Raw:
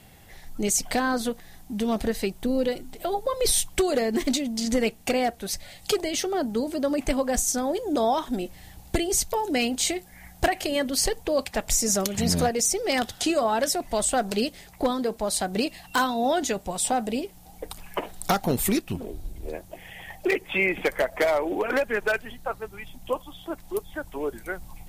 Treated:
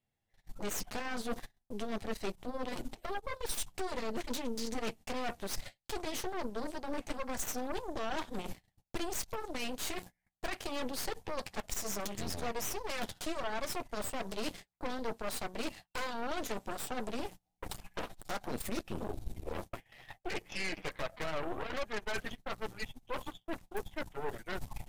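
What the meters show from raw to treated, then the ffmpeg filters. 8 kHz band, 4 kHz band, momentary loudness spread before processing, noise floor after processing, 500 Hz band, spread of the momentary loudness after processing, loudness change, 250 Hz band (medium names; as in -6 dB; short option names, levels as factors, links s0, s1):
-16.0 dB, -12.0 dB, 13 LU, -84 dBFS, -14.5 dB, 6 LU, -14.0 dB, -14.5 dB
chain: -af "agate=range=0.0251:threshold=0.01:ratio=16:detection=peak,highshelf=f=11000:g=-10,areverse,acompressor=threshold=0.0126:ratio=5,areverse,flanger=delay=8.2:depth=1.7:regen=-29:speed=0.65:shape=triangular,aeval=exprs='0.0398*(cos(1*acos(clip(val(0)/0.0398,-1,1)))-cos(1*PI/2))+0.0112*(cos(8*acos(clip(val(0)/0.0398,-1,1)))-cos(8*PI/2))':c=same,volume=1.19"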